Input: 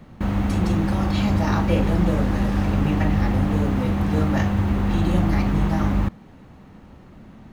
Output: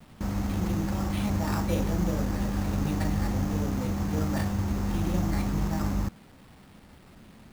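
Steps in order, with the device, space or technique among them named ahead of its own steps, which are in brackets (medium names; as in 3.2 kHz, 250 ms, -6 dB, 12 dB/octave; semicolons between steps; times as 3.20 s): early 8-bit sampler (sample-rate reducer 6.4 kHz, jitter 0%; bit crusher 8-bit); trim -7.5 dB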